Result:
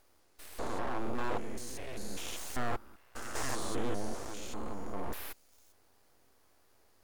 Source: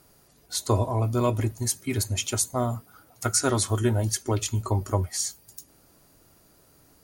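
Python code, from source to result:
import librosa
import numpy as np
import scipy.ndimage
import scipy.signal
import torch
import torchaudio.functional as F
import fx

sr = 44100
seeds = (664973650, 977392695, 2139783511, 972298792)

y = fx.spec_steps(x, sr, hold_ms=200)
y = fx.rider(y, sr, range_db=10, speed_s=2.0)
y = fx.high_shelf(y, sr, hz=6100.0, db=-9.5)
y = np.abs(y)
y = fx.peak_eq(y, sr, hz=170.0, db=-11.0, octaves=0.79)
y = y * 10.0 ** (-3.5 / 20.0)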